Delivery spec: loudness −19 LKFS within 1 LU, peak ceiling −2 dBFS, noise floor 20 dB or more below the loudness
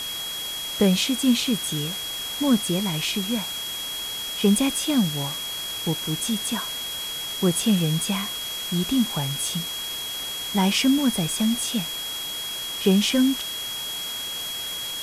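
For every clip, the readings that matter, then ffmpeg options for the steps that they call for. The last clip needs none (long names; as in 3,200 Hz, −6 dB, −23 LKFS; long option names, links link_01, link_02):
interfering tone 3,300 Hz; level of the tone −30 dBFS; background noise floor −31 dBFS; target noise floor −44 dBFS; integrated loudness −24.0 LKFS; sample peak −6.5 dBFS; target loudness −19.0 LKFS
→ -af "bandreject=frequency=3300:width=30"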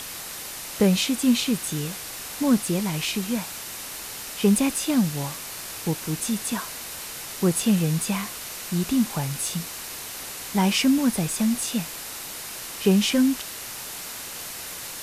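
interfering tone none found; background noise floor −36 dBFS; target noise floor −46 dBFS
→ -af "afftdn=noise_reduction=10:noise_floor=-36"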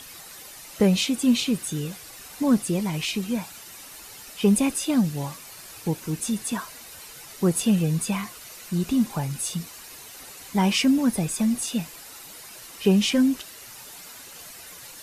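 background noise floor −44 dBFS; target noise floor −45 dBFS
→ -af "afftdn=noise_reduction=6:noise_floor=-44"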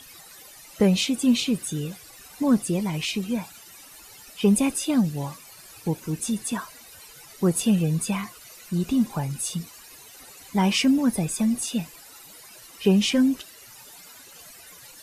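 background noise floor −47 dBFS; integrated loudness −24.5 LKFS; sample peak −8.0 dBFS; target loudness −19.0 LKFS
→ -af "volume=5.5dB"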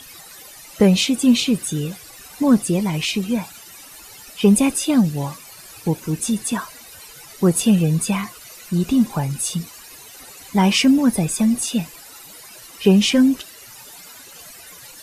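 integrated loudness −19.0 LKFS; sample peak −2.5 dBFS; background noise floor −42 dBFS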